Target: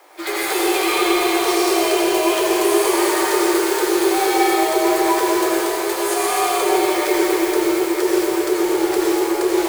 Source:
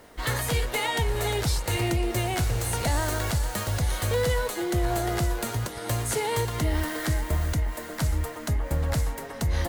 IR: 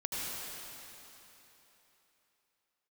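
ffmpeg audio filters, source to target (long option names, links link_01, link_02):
-filter_complex "[0:a]afreqshift=290,acrusher=bits=3:mode=log:mix=0:aa=0.000001[link_01];[1:a]atrim=start_sample=2205[link_02];[link_01][link_02]afir=irnorm=-1:irlink=0,volume=4dB"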